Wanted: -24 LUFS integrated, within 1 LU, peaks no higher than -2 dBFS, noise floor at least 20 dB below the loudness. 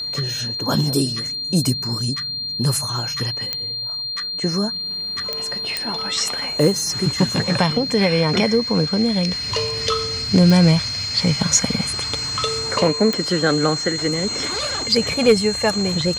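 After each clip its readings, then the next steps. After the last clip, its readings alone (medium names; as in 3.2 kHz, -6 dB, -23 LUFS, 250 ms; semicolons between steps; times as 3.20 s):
clicks found 5; steady tone 4.2 kHz; tone level -24 dBFS; loudness -19.5 LUFS; peak level -2.0 dBFS; loudness target -24.0 LUFS
-> de-click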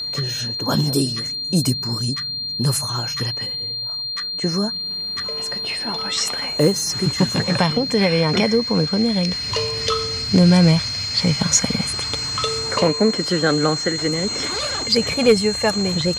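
clicks found 0; steady tone 4.2 kHz; tone level -24 dBFS
-> band-stop 4.2 kHz, Q 30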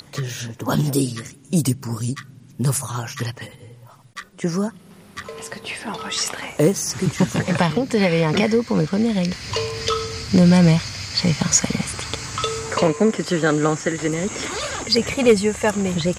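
steady tone not found; loudness -20.5 LUFS; peak level -2.5 dBFS; loudness target -24.0 LUFS
-> trim -3.5 dB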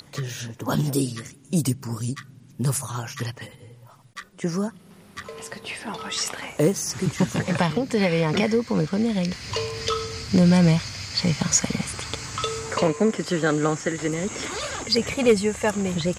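loudness -24.0 LUFS; peak level -6.0 dBFS; noise floor -50 dBFS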